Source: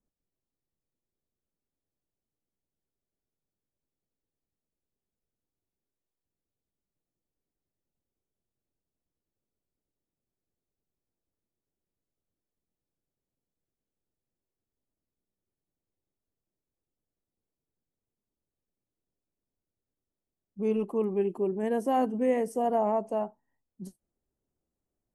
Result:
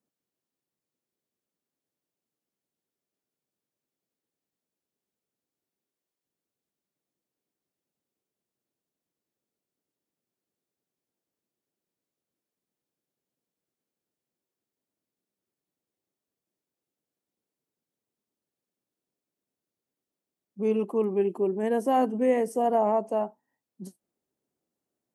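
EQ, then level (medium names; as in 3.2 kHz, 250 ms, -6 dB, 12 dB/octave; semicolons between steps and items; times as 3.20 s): high-pass 180 Hz 12 dB/octave; +3.0 dB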